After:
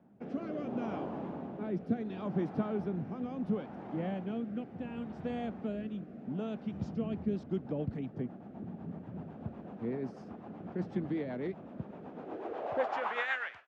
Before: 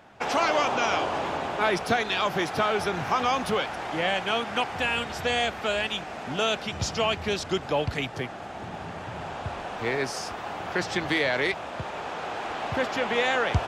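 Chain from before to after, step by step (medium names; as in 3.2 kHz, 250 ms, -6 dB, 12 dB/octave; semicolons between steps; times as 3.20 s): fade out at the end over 0.64 s; rotary cabinet horn 0.7 Hz, later 8 Hz, at 6.74 s; band-pass sweep 210 Hz -> 1.8 kHz, 12.10–13.36 s; trim +4 dB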